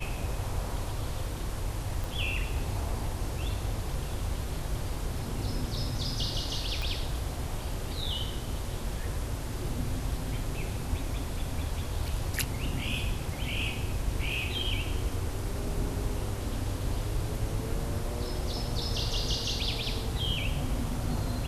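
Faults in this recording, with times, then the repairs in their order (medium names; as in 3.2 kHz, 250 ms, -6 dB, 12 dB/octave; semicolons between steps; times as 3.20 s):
2.04 s: pop
6.82 s: pop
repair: de-click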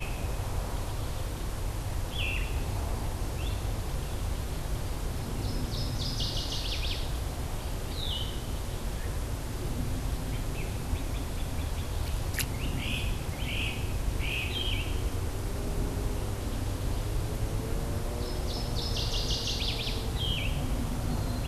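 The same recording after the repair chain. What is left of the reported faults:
6.82 s: pop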